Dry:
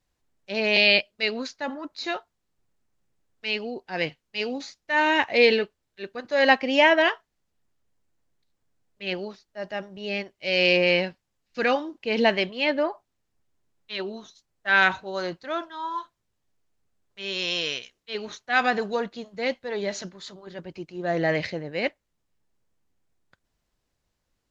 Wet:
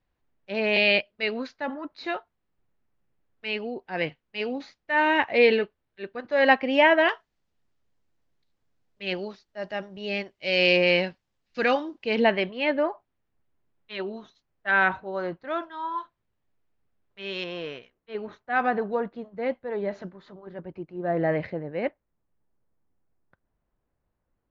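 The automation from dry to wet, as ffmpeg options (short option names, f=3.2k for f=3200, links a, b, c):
-af "asetnsamples=n=441:p=0,asendcmd='7.09 lowpass f 5300;12.16 lowpass f 2600;14.71 lowpass f 1700;15.47 lowpass f 2700;17.44 lowpass f 1400',lowpass=2.7k"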